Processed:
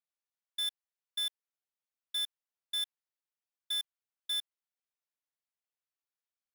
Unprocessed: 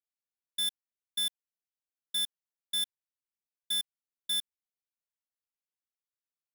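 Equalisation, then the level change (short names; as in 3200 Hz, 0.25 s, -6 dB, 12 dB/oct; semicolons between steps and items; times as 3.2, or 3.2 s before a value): HPF 510 Hz 12 dB/oct; high shelf 5400 Hz -8.5 dB; 0.0 dB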